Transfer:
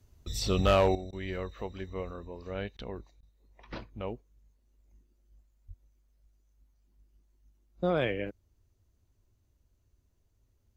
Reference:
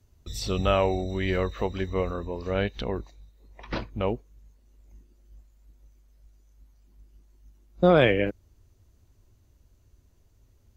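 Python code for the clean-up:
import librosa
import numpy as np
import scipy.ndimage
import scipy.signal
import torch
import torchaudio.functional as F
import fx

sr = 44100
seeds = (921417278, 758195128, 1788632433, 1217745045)

y = fx.fix_declip(x, sr, threshold_db=-17.0)
y = fx.fix_deplosive(y, sr, at_s=(5.67,))
y = fx.fix_interpolate(y, sr, at_s=(1.11, 2.77, 3.21), length_ms=16.0)
y = fx.fix_level(y, sr, at_s=0.95, step_db=10.0)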